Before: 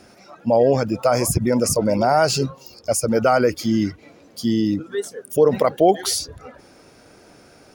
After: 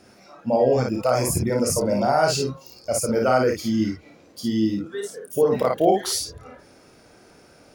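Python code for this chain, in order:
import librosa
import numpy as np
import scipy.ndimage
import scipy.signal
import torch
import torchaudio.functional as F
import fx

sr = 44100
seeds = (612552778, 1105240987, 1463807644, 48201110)

y = fx.room_early_taps(x, sr, ms=(31, 55), db=(-6.0, -3.0))
y = y * librosa.db_to_amplitude(-5.0)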